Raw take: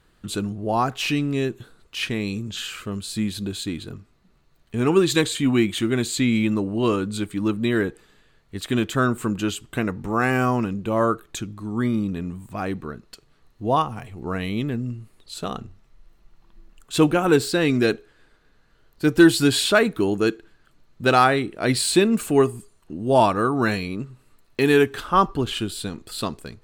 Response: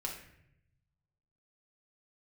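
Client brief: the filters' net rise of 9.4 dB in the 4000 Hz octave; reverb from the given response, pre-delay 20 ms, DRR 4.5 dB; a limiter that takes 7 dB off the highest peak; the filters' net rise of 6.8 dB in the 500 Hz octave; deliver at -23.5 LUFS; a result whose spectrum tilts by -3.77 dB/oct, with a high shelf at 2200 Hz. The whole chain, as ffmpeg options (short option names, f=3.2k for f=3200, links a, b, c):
-filter_complex "[0:a]equalizer=f=500:t=o:g=8.5,highshelf=f=2.2k:g=8.5,equalizer=f=4k:t=o:g=3.5,alimiter=limit=-5.5dB:level=0:latency=1,asplit=2[a][b];[1:a]atrim=start_sample=2205,adelay=20[c];[b][c]afir=irnorm=-1:irlink=0,volume=-5.5dB[d];[a][d]amix=inputs=2:normalize=0,volume=-6dB"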